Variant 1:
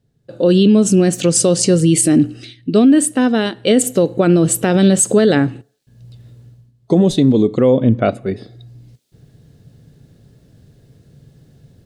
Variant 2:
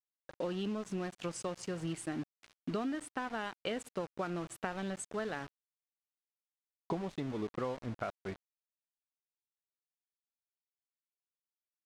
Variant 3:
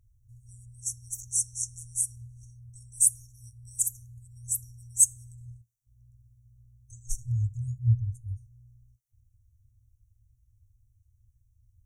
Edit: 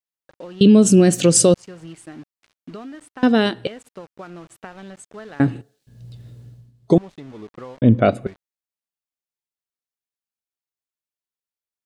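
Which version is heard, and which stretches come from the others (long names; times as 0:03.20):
2
0:00.61–0:01.54: punch in from 1
0:03.23–0:03.67: punch in from 1
0:05.40–0:06.98: punch in from 1
0:07.82–0:08.27: punch in from 1
not used: 3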